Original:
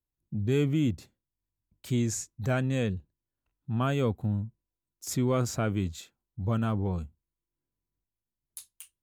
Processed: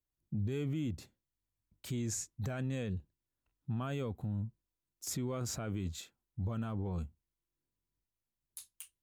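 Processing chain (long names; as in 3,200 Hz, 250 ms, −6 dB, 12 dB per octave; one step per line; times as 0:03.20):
brickwall limiter −26.5 dBFS, peak gain reduction 11.5 dB
level −2 dB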